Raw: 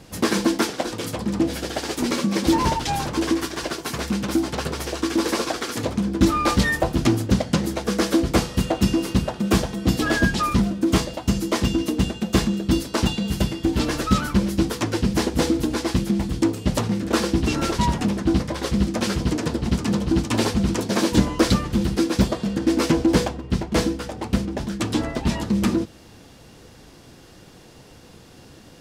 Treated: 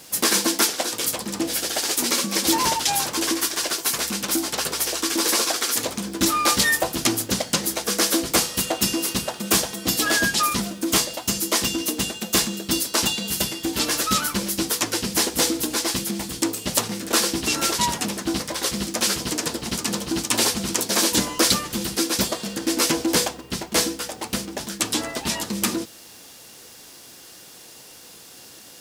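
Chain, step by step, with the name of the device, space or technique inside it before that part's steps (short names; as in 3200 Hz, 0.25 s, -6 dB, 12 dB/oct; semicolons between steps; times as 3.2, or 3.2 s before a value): turntable without a phono preamp (RIAA curve recording; white noise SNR 34 dB)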